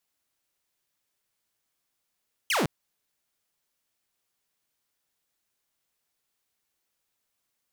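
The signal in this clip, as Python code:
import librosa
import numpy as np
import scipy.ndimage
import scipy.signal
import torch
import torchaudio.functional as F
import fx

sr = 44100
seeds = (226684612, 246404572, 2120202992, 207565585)

y = fx.laser_zap(sr, level_db=-20.0, start_hz=3300.0, end_hz=120.0, length_s=0.16, wave='saw')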